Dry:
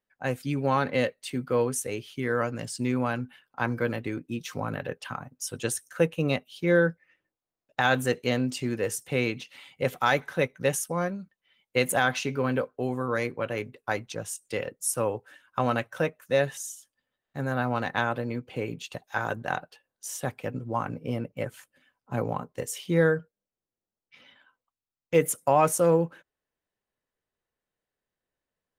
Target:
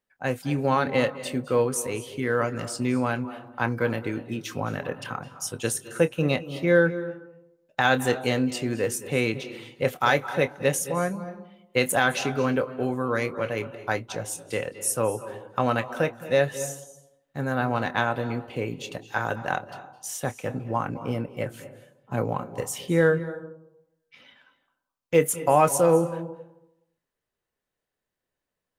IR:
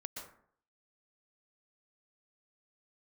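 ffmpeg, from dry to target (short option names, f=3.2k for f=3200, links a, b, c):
-filter_complex "[0:a]asplit=2[a][b];[1:a]atrim=start_sample=2205,asetrate=28665,aresample=44100,adelay=27[c];[b][c]afir=irnorm=-1:irlink=0,volume=-10.5dB[d];[a][d]amix=inputs=2:normalize=0,volume=2dB"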